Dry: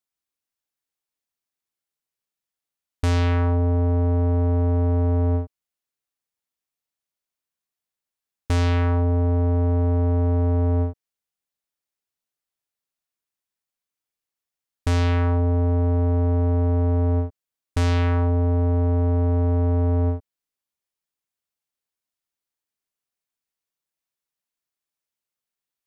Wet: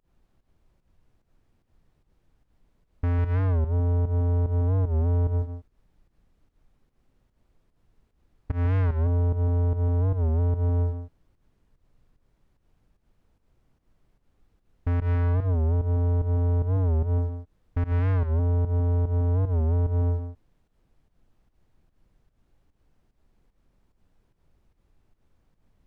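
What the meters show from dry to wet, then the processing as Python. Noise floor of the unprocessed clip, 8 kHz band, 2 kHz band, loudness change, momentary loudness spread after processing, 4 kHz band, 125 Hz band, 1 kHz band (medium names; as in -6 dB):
under -85 dBFS, no reading, -9.0 dB, -3.5 dB, 7 LU, under -15 dB, -2.5 dB, -8.0 dB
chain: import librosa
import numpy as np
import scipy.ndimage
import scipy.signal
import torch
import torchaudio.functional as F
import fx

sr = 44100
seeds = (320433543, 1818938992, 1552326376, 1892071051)

y = scipy.signal.sosfilt(scipy.signal.butter(4, 2000.0, 'lowpass', fs=sr, output='sos'), x)
y = fx.low_shelf(y, sr, hz=140.0, db=7.5)
y = fx.leveller(y, sr, passes=1)
y = fx.rider(y, sr, range_db=10, speed_s=2.0)
y = fx.dmg_noise_colour(y, sr, seeds[0], colour='brown', level_db=-54.0)
y = fx.volume_shaper(y, sr, bpm=148, per_beat=1, depth_db=-23, release_ms=129.0, shape='fast start')
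y = y + 10.0 ** (-9.0 / 20.0) * np.pad(y, (int(151 * sr / 1000.0), 0))[:len(y)]
y = fx.record_warp(y, sr, rpm=45.0, depth_cents=160.0)
y = F.gain(torch.from_numpy(y), -9.0).numpy()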